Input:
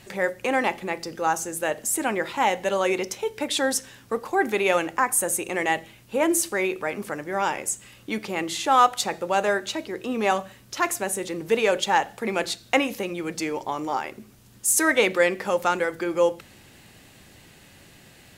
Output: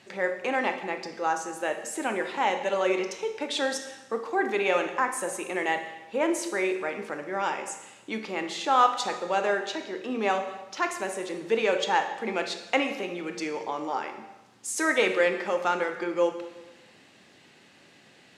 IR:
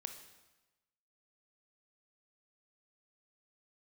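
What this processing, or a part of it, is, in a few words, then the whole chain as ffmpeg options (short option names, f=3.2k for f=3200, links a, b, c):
supermarket ceiling speaker: -filter_complex "[0:a]highpass=210,lowpass=5.8k[a];[1:a]atrim=start_sample=2205[b];[a][b]afir=irnorm=-1:irlink=0"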